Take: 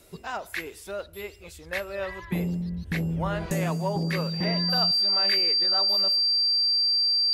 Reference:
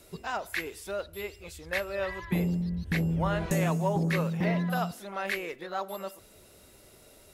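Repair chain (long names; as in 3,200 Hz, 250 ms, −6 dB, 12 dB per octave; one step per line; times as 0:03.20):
notch filter 4,700 Hz, Q 30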